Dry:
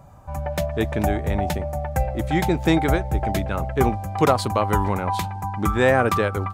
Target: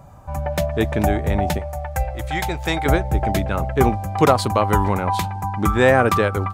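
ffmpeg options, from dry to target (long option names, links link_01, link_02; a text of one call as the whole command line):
ffmpeg -i in.wav -filter_complex "[0:a]asettb=1/sr,asplit=3[link_01][link_02][link_03];[link_01]atrim=end=1.594[link_04];[link_02]atrim=start=1.59:end=2.86,asetpts=PTS-STARTPTS,afade=type=in:duration=0.004:curve=qsin,afade=type=out:start_time=1.266:duration=0.004:curve=qsin,equalizer=frequency=240:width=0.76:gain=-15[link_05];[link_03]atrim=start=2.856[link_06];[link_04][link_05]acrossfade=duration=0.004:curve1=hsin:curve2=qsin[link_07];[link_07][link_06]acrossfade=duration=0.004:curve1=qsin:curve2=hsin,volume=3dB" out.wav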